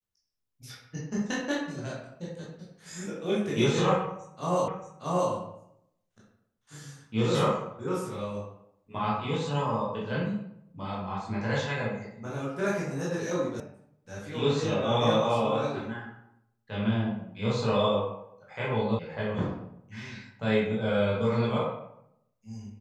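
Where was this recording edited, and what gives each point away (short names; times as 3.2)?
4.68 repeat of the last 0.63 s
13.6 sound cut off
18.99 sound cut off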